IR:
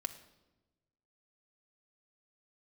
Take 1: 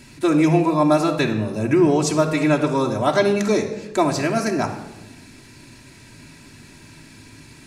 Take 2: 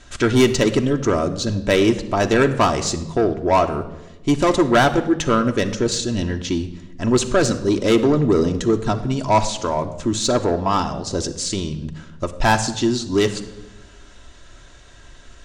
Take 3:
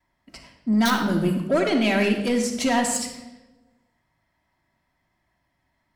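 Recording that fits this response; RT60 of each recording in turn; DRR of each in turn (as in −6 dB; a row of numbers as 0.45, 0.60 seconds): 2; 1.1, 1.1, 1.1 seconds; −0.5, 5.0, −9.5 decibels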